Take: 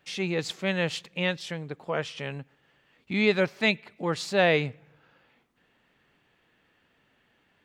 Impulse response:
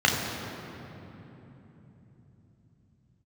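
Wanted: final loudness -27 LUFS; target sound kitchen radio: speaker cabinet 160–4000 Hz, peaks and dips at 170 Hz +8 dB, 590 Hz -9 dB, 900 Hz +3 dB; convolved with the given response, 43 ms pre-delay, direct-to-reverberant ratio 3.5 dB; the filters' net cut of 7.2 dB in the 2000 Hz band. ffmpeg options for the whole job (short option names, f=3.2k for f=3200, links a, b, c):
-filter_complex "[0:a]equalizer=f=2k:t=o:g=-9,asplit=2[a][b];[1:a]atrim=start_sample=2205,adelay=43[c];[b][c]afir=irnorm=-1:irlink=0,volume=-21dB[d];[a][d]amix=inputs=2:normalize=0,highpass=160,equalizer=f=170:t=q:w=4:g=8,equalizer=f=590:t=q:w=4:g=-9,equalizer=f=900:t=q:w=4:g=3,lowpass=f=4k:w=0.5412,lowpass=f=4k:w=1.3066,volume=1dB"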